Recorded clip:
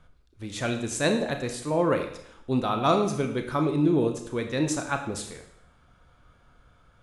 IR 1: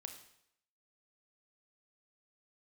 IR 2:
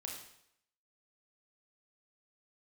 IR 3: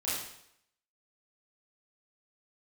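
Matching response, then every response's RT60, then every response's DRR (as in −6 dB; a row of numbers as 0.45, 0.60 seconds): 1; 0.75, 0.75, 0.75 seconds; 5.0, −1.0, −10.5 decibels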